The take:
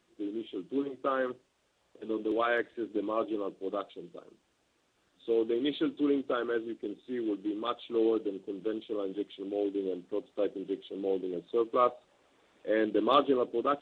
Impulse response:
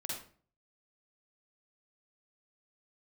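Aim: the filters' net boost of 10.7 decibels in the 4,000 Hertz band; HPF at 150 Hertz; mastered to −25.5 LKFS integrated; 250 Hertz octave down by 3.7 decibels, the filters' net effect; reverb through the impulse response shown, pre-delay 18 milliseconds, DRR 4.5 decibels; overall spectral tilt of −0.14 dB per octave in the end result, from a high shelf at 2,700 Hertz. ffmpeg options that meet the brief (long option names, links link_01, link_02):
-filter_complex "[0:a]highpass=150,equalizer=frequency=250:width_type=o:gain=-5,highshelf=frequency=2700:gain=8,equalizer=frequency=4000:width_type=o:gain=7.5,asplit=2[link_01][link_02];[1:a]atrim=start_sample=2205,adelay=18[link_03];[link_02][link_03]afir=irnorm=-1:irlink=0,volume=-5dB[link_04];[link_01][link_04]amix=inputs=2:normalize=0,volume=5.5dB"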